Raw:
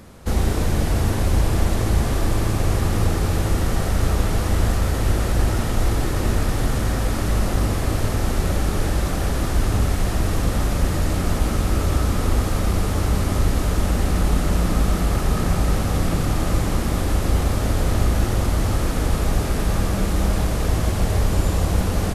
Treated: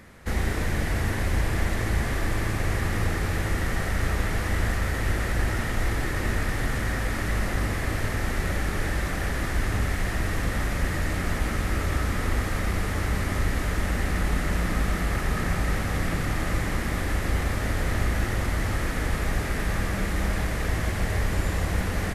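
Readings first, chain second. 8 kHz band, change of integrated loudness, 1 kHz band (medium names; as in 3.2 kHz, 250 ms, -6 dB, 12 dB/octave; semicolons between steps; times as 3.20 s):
-6.0 dB, -5.5 dB, -4.5 dB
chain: peaking EQ 1.9 kHz +12 dB 0.74 oct; trim -6.5 dB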